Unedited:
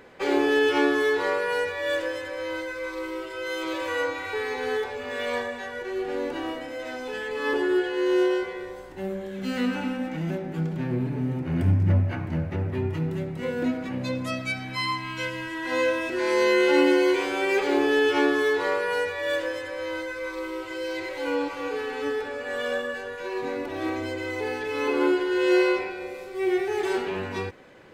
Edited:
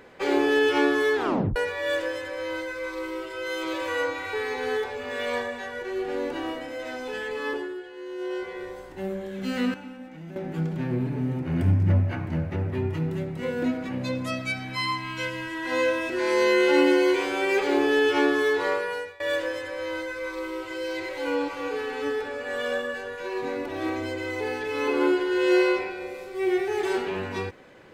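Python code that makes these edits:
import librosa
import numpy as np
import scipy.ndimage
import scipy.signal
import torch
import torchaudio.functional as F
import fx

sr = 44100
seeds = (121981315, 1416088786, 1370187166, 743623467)

y = fx.edit(x, sr, fx.tape_stop(start_s=1.16, length_s=0.4),
    fx.fade_down_up(start_s=7.29, length_s=1.35, db=-14.0, fade_s=0.46),
    fx.clip_gain(start_s=9.74, length_s=0.62, db=-11.5),
    fx.fade_out_to(start_s=18.72, length_s=0.48, floor_db=-22.5), tone=tone)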